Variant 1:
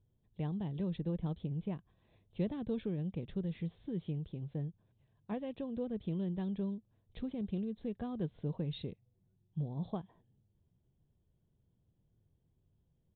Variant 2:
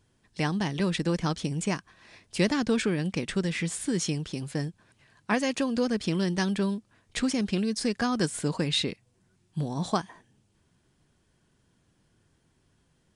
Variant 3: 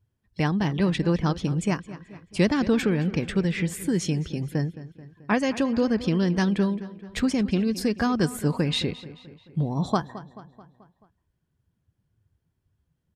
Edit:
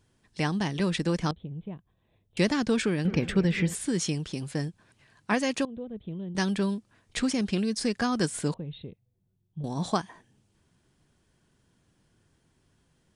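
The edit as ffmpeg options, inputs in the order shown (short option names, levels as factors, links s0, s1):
-filter_complex "[0:a]asplit=3[s0][s1][s2];[1:a]asplit=5[s3][s4][s5][s6][s7];[s3]atrim=end=1.312[s8];[s0]atrim=start=1.308:end=2.372[s9];[s4]atrim=start=2.368:end=3.052[s10];[2:a]atrim=start=3.048:end=3.752[s11];[s5]atrim=start=3.748:end=5.652[s12];[s1]atrim=start=5.648:end=6.352[s13];[s6]atrim=start=6.348:end=8.542[s14];[s2]atrim=start=8.538:end=9.642[s15];[s7]atrim=start=9.638[s16];[s8][s9]acrossfade=d=0.004:c1=hsin:c2=hsin[s17];[s17][s10]acrossfade=d=0.004:c1=hsin:c2=hsin[s18];[s18][s11]acrossfade=d=0.004:c1=hsin:c2=hsin[s19];[s19][s12]acrossfade=d=0.004:c1=hsin:c2=hsin[s20];[s20][s13]acrossfade=d=0.004:c1=hsin:c2=hsin[s21];[s21][s14]acrossfade=d=0.004:c1=hsin:c2=hsin[s22];[s22][s15]acrossfade=d=0.004:c1=hsin:c2=hsin[s23];[s23][s16]acrossfade=d=0.004:c1=hsin:c2=hsin"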